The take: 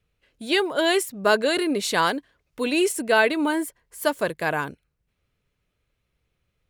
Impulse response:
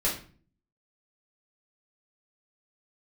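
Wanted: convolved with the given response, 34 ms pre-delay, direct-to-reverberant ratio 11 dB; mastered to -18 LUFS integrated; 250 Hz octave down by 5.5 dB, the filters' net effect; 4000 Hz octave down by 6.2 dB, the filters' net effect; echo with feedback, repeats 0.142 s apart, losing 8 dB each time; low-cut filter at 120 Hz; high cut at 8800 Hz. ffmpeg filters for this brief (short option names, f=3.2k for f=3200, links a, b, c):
-filter_complex "[0:a]highpass=120,lowpass=8.8k,equalizer=f=250:t=o:g=-8,equalizer=f=4k:t=o:g=-8.5,aecho=1:1:142|284|426|568|710:0.398|0.159|0.0637|0.0255|0.0102,asplit=2[a][b];[1:a]atrim=start_sample=2205,adelay=34[c];[b][c]afir=irnorm=-1:irlink=0,volume=-20dB[d];[a][d]amix=inputs=2:normalize=0,volume=6.5dB"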